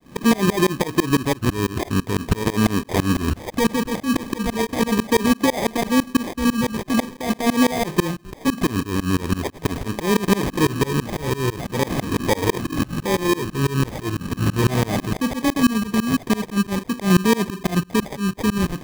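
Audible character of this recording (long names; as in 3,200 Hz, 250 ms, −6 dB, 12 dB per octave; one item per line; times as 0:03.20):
tremolo saw up 6 Hz, depth 100%
phaser sweep stages 4, 0.42 Hz, lowest notch 700–1,700 Hz
aliases and images of a low sample rate 1,400 Hz, jitter 0%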